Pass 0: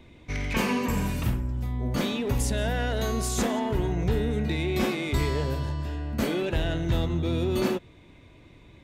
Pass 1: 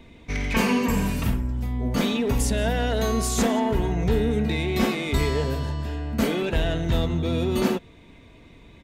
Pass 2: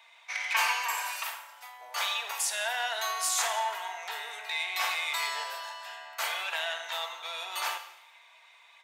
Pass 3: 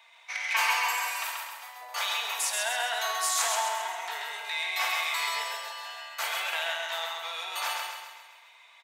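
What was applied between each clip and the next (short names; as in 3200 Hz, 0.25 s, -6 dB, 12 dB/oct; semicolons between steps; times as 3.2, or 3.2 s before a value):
comb 4.4 ms, depth 33%; gain +3 dB
steep high-pass 780 Hz 36 dB/oct; Schroeder reverb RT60 0.82 s, combs from 33 ms, DRR 8.5 dB
feedback echo 0.133 s, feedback 50%, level -4 dB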